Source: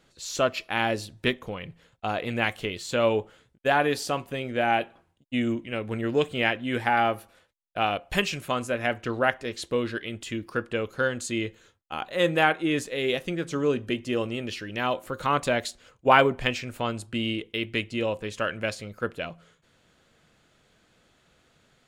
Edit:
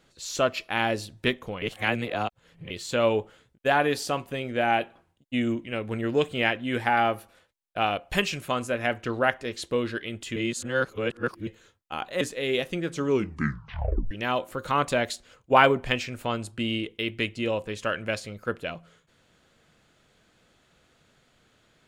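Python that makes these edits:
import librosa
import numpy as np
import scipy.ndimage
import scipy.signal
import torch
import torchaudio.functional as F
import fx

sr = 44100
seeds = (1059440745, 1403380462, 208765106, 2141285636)

y = fx.edit(x, sr, fx.reverse_span(start_s=1.62, length_s=1.08),
    fx.reverse_span(start_s=10.36, length_s=1.11),
    fx.cut(start_s=12.21, length_s=0.55),
    fx.tape_stop(start_s=13.61, length_s=1.05), tone=tone)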